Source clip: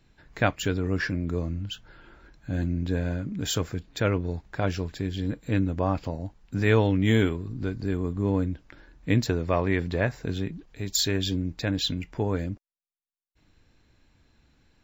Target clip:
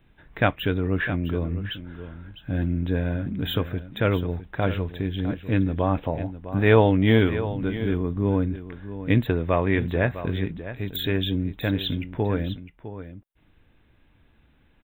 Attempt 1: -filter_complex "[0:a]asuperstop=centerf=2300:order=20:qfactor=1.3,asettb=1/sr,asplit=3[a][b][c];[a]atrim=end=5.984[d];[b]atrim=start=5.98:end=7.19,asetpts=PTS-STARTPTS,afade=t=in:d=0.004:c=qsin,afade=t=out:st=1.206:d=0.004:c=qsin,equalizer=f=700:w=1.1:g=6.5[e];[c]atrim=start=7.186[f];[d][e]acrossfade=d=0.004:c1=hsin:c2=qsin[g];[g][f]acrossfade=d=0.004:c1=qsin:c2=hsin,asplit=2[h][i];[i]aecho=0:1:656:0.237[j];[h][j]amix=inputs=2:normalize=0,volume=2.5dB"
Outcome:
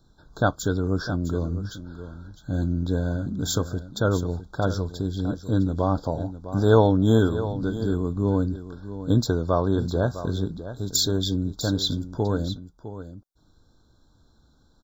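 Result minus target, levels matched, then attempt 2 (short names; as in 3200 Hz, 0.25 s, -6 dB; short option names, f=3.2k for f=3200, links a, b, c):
2000 Hz band -7.0 dB
-filter_complex "[0:a]asuperstop=centerf=5600:order=20:qfactor=1.3,asettb=1/sr,asplit=3[a][b][c];[a]atrim=end=5.984[d];[b]atrim=start=5.98:end=7.19,asetpts=PTS-STARTPTS,afade=t=in:d=0.004:c=qsin,afade=t=out:st=1.206:d=0.004:c=qsin,equalizer=f=700:w=1.1:g=6.5[e];[c]atrim=start=7.186[f];[d][e]acrossfade=d=0.004:c1=hsin:c2=qsin[g];[g][f]acrossfade=d=0.004:c1=qsin:c2=hsin,asplit=2[h][i];[i]aecho=0:1:656:0.237[j];[h][j]amix=inputs=2:normalize=0,volume=2.5dB"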